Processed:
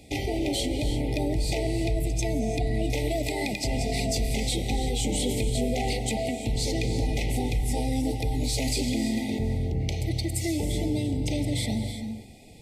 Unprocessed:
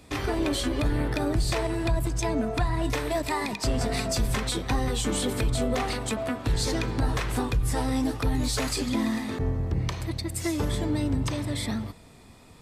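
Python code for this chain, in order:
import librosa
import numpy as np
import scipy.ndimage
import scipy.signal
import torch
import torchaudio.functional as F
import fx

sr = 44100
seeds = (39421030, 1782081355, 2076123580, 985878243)

p1 = fx.over_compress(x, sr, threshold_db=-29.0, ratio=-1.0)
p2 = x + F.gain(torch.from_numpy(p1), -0.5).numpy()
p3 = fx.brickwall_bandstop(p2, sr, low_hz=880.0, high_hz=1900.0)
p4 = fx.rev_gated(p3, sr, seeds[0], gate_ms=370, shape='rising', drr_db=8.0)
y = F.gain(torch.from_numpy(p4), -5.5).numpy()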